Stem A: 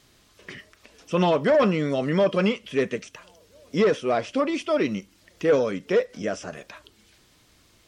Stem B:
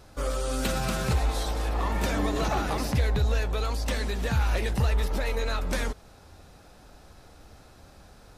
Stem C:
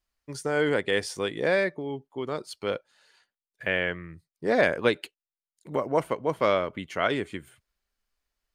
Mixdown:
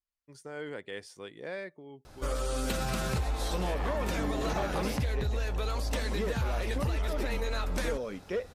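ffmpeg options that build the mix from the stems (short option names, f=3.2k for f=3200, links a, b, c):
-filter_complex "[0:a]adelay=2400,volume=-10.5dB[a];[1:a]adelay=2050,volume=-0.5dB[b];[2:a]volume=-15dB[c];[a][b][c]amix=inputs=3:normalize=0,acompressor=threshold=-27dB:ratio=6"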